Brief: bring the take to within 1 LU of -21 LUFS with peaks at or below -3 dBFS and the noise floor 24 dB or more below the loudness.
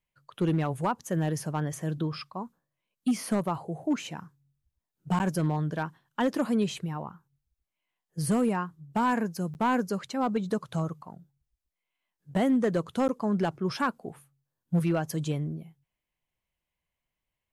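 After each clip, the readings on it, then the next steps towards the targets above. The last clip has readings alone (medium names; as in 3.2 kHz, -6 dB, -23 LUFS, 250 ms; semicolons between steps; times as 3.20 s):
clipped samples 0.6%; clipping level -19.0 dBFS; dropouts 3; longest dropout 9.8 ms; loudness -29.5 LUFS; peak level -19.0 dBFS; loudness target -21.0 LUFS
-> clip repair -19 dBFS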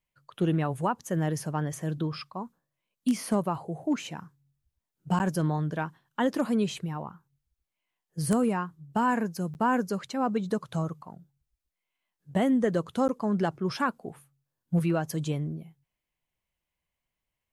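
clipped samples 0.0%; dropouts 3; longest dropout 9.8 ms
-> interpolate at 5.19/9.54/13.08 s, 9.8 ms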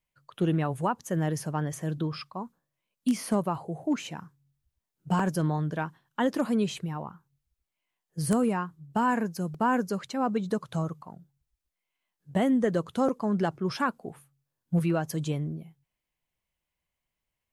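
dropouts 0; loudness -29.5 LUFS; peak level -10.0 dBFS; loudness target -21.0 LUFS
-> trim +8.5 dB; peak limiter -3 dBFS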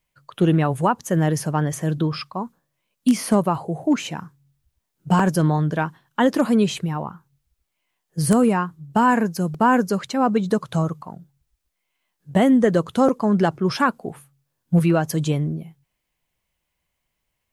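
loudness -21.0 LUFS; peak level -3.0 dBFS; noise floor -78 dBFS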